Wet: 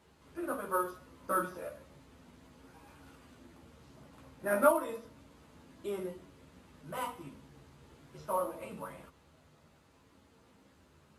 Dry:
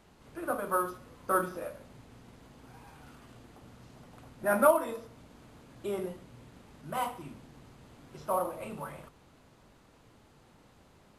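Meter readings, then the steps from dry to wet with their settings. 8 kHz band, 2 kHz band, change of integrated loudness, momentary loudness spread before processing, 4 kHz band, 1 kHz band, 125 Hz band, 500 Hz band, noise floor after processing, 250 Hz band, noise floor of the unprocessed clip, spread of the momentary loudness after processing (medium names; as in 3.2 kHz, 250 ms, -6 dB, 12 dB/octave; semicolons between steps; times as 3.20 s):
-3.0 dB, -3.0 dB, -3.0 dB, 24 LU, -3.0 dB, -3.5 dB, -4.5 dB, -3.0 dB, -65 dBFS, -2.5 dB, -61 dBFS, 22 LU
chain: high-pass 63 Hz; band-stop 740 Hz, Q 12; chorus voices 4, 0.3 Hz, delay 13 ms, depth 2.2 ms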